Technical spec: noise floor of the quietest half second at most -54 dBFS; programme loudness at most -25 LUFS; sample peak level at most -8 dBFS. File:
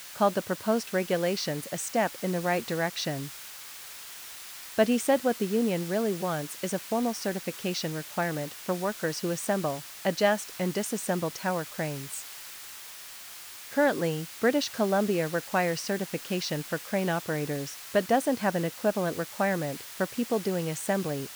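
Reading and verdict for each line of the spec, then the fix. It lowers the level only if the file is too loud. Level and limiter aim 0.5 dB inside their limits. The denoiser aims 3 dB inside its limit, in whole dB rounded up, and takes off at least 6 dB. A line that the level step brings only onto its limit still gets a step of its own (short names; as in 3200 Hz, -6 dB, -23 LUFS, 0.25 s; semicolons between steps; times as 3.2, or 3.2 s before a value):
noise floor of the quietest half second -44 dBFS: fail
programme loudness -29.0 LUFS: OK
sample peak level -9.0 dBFS: OK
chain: denoiser 13 dB, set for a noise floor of -44 dBFS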